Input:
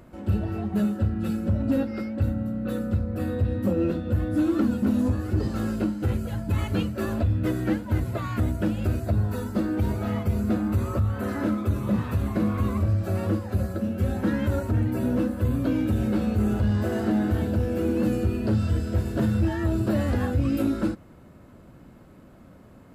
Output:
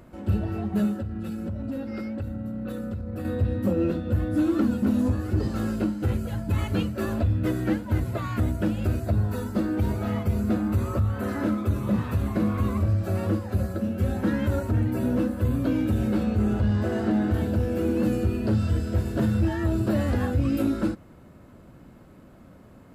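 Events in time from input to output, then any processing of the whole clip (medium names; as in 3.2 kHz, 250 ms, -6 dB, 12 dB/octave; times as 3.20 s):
1.00–3.25 s: compression, threshold -28 dBFS
16.23–17.34 s: treble shelf 9.9 kHz -11.5 dB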